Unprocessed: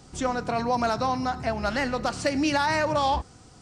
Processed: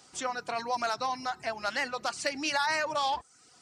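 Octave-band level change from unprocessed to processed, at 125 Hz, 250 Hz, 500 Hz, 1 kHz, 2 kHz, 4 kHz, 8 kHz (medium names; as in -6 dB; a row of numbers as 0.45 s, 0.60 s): -21.0 dB, -14.5 dB, -8.0 dB, -5.0 dB, -2.0 dB, -1.0 dB, -1.0 dB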